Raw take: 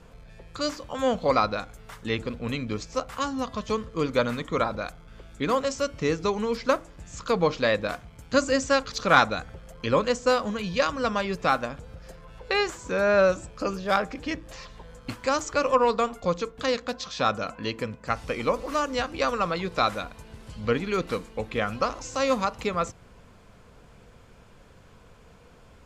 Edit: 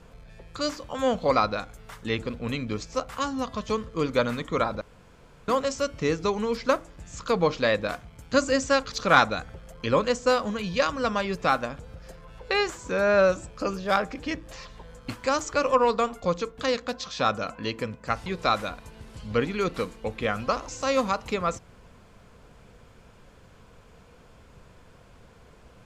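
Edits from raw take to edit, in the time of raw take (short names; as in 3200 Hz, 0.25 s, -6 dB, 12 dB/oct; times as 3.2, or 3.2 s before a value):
4.81–5.48 room tone
18.26–19.59 cut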